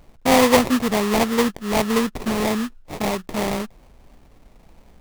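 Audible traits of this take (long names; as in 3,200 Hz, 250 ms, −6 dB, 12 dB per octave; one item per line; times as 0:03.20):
aliases and images of a low sample rate 1,500 Hz, jitter 20%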